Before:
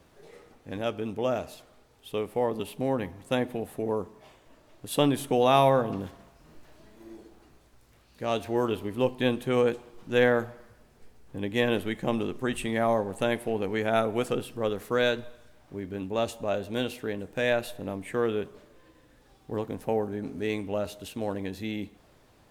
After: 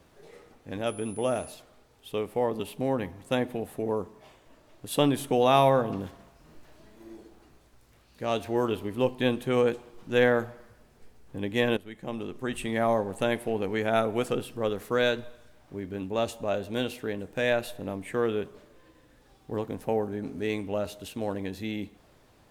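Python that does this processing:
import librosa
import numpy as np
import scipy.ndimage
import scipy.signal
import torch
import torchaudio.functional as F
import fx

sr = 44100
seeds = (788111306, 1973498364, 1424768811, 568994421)

y = fx.dmg_tone(x, sr, hz=10000.0, level_db=-45.0, at=(0.86, 1.51), fade=0.02)
y = fx.edit(y, sr, fx.fade_in_from(start_s=11.77, length_s=1.05, floor_db=-16.0), tone=tone)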